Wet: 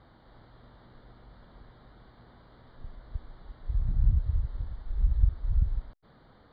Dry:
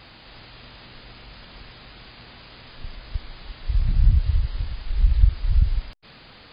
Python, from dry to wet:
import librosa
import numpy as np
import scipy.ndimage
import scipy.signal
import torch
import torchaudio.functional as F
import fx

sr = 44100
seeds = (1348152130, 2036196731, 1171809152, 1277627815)

y = scipy.signal.lfilter(np.full(17, 1.0 / 17), 1.0, x)
y = y * librosa.db_to_amplitude(-7.0)